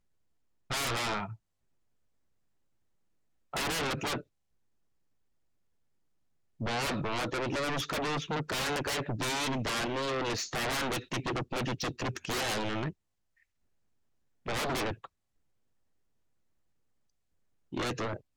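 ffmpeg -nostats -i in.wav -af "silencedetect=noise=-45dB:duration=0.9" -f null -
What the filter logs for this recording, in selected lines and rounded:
silence_start: 1.35
silence_end: 3.53 | silence_duration: 2.18
silence_start: 4.21
silence_end: 6.60 | silence_duration: 2.39
silence_start: 12.91
silence_end: 14.46 | silence_duration: 1.55
silence_start: 15.06
silence_end: 17.72 | silence_duration: 2.67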